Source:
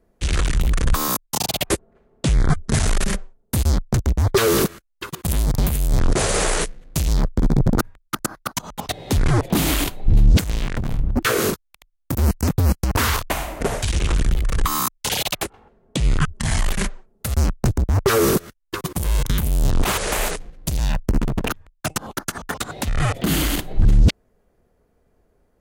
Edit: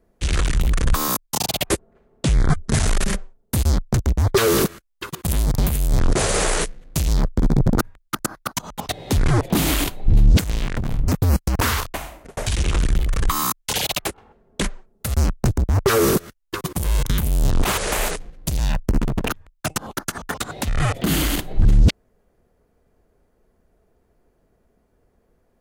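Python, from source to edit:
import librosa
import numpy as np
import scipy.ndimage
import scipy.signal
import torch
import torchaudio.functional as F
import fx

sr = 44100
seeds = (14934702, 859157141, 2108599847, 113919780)

y = fx.edit(x, sr, fx.cut(start_s=11.08, length_s=1.36),
    fx.fade_out_span(start_s=12.96, length_s=0.77),
    fx.cut(start_s=15.97, length_s=0.84), tone=tone)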